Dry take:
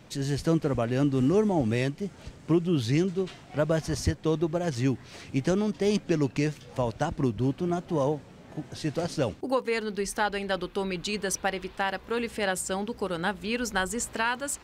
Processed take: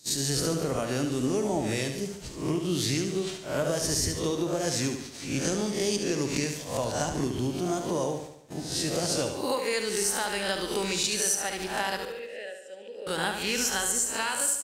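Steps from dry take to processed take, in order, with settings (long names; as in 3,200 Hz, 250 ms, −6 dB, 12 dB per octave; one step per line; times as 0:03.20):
peak hold with a rise ahead of every peak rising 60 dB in 0.50 s
noise gate −40 dBFS, range −19 dB
bass and treble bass −3 dB, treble +14 dB
downward compressor, threshold −25 dBFS, peak gain reduction 13.5 dB
0:12.05–0:13.07: formant filter e
repeating echo 72 ms, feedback 51%, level −7 dB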